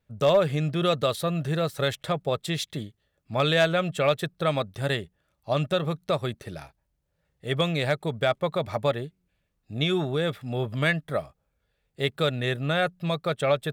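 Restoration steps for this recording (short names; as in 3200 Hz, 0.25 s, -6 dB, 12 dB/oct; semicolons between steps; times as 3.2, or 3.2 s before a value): clip repair -12.5 dBFS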